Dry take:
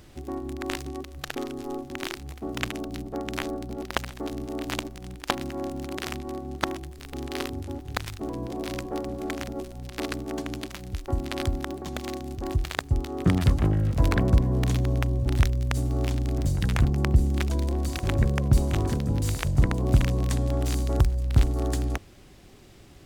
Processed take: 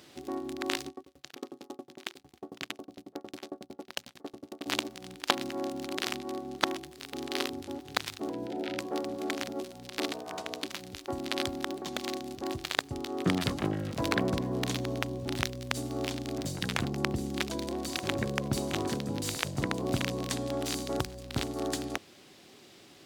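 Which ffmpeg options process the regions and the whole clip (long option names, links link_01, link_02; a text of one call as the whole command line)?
ffmpeg -i in.wav -filter_complex "[0:a]asettb=1/sr,asplit=3[link_01][link_02][link_03];[link_01]atrim=end=0.884[link_04];[link_02]atrim=start=0.88:end=4.66,asetpts=PTS-STARTPTS,afade=type=in:duration=0.004:curve=qsin,afade=type=out:start_time=3.776:duration=0.004:curve=qsin,highpass=46,asoftclip=type=hard:threshold=-11dB,aeval=exprs='val(0)*pow(10,-35*if(lt(mod(11*n/s,1),2*abs(11)/1000),1-mod(11*n/s,1)/(2*abs(11)/1000),(mod(11*n/s,1)-2*abs(11)/1000)/(1-2*abs(11)/1000))/20)':channel_layout=same[link_05];[link_03]atrim=start=4.656[link_06];[link_04][link_05]acrossfade=duration=0.004:curve1=hsin:curve2=qsin[link_07];[link_07][link_06]acrossfade=duration=0.004:curve1=qsin:curve2=hsin,asettb=1/sr,asplit=3[link_08][link_09][link_10];[link_08]atrim=end=8.304[link_11];[link_09]atrim=start=8.3:end=8.79,asetpts=PTS-STARTPTS,afade=type=in:duration=0.004:curve=qsin,afade=type=out:start_time=0.486:duration=0.004:curve=qsin,acrossover=split=3500[link_12][link_13];[link_13]acompressor=threshold=-55dB:ratio=4:attack=1:release=60[link_14];[link_12][link_14]amix=inputs=2:normalize=0,asuperstop=centerf=1100:order=20:qfactor=4.5[link_15];[link_10]atrim=start=8.786[link_16];[link_11][link_15]acrossfade=duration=0.004:curve1=hsin:curve2=qsin[link_17];[link_17][link_16]acrossfade=duration=0.004:curve1=qsin:curve2=hsin,asettb=1/sr,asplit=3[link_18][link_19][link_20];[link_18]atrim=end=10.124[link_21];[link_19]atrim=start=10.12:end=10.63,asetpts=PTS-STARTPTS,afade=type=in:duration=0.004:curve=qsin,afade=type=out:start_time=0.506:duration=0.004:curve=qsin,equalizer=frequency=230:width_type=o:width=0.88:gain=-4,aeval=exprs='val(0)*sin(2*PI*370*n/s)':channel_layout=same[link_22];[link_20]atrim=start=10.626[link_23];[link_21][link_22]acrossfade=duration=0.004:curve1=hsin:curve2=qsin[link_24];[link_24][link_23]acrossfade=duration=0.004:curve1=qsin:curve2=hsin,highpass=220,equalizer=frequency=4000:width=1:gain=5.5,volume=-1.5dB" out.wav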